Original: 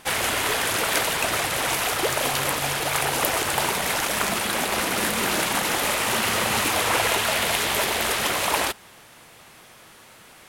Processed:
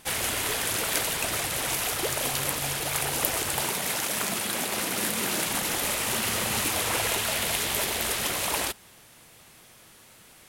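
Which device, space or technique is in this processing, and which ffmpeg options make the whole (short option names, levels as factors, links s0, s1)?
smiley-face EQ: -filter_complex "[0:a]lowshelf=f=190:g=4.5,equalizer=f=1100:t=o:w=1.9:g=-3,highshelf=f=5500:g=6,asettb=1/sr,asplit=3[s0][s1][s2];[s0]atrim=end=3.614[s3];[s1]atrim=start=3.61:end=5.47,asetpts=PTS-STARTPTS,afade=t=in:d=0.004:c=qsin,afade=t=out:st=1.856:d=0.004:c=qsin,highpass=110[s4];[s2]atrim=start=5.466[s5];[s3][s4]acrossfade=d=0.004:c1=hsin:c2=qsin[s6];[s6][s5]acrossfade=d=0.004:c1=qsin:c2=hsin,volume=0.531"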